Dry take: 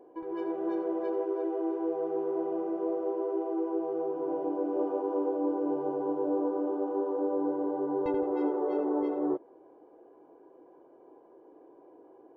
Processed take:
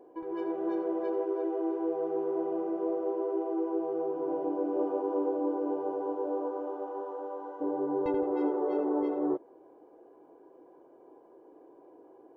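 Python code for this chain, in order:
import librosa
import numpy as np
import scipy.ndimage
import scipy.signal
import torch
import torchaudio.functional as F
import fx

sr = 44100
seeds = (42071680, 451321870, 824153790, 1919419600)

y = fx.highpass(x, sr, hz=fx.line((5.39, 230.0), (7.6, 900.0)), slope=12, at=(5.39, 7.6), fade=0.02)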